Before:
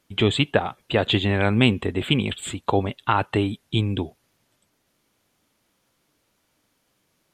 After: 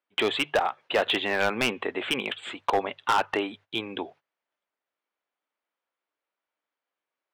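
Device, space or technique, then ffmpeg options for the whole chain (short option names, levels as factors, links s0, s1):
walkie-talkie: -af "highpass=600,lowpass=2400,bandreject=f=50:t=h:w=6,bandreject=f=100:t=h:w=6,bandreject=f=150:t=h:w=6,asoftclip=type=hard:threshold=0.0944,agate=range=0.126:threshold=0.00224:ratio=16:detection=peak,volume=1.58"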